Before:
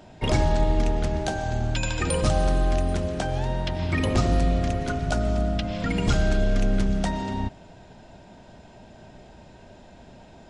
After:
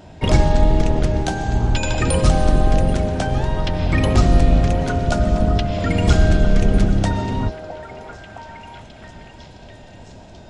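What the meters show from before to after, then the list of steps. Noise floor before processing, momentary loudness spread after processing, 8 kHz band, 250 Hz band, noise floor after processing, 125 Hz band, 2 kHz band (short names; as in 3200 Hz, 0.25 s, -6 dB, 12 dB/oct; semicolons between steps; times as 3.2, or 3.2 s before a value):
-49 dBFS, 18 LU, +4.5 dB, +6.0 dB, -41 dBFS, +7.5 dB, +5.0 dB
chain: octaver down 1 oct, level +1 dB; vibrato 1.5 Hz 18 cents; delay with a stepping band-pass 0.662 s, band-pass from 580 Hz, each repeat 0.7 oct, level -6 dB; gain +4.5 dB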